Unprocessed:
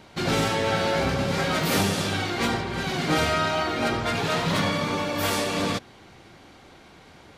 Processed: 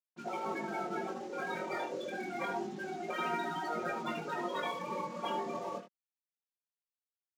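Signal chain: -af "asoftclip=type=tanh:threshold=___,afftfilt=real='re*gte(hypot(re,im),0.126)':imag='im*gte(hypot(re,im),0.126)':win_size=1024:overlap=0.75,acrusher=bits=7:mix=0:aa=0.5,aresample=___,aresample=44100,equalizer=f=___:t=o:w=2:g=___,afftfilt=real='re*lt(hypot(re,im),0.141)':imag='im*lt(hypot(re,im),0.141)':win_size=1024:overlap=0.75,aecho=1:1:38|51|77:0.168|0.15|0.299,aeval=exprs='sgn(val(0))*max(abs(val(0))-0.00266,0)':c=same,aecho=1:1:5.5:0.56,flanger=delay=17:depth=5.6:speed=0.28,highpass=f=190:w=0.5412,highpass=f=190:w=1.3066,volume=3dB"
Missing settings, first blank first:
-15.5dB, 16000, 2100, -5.5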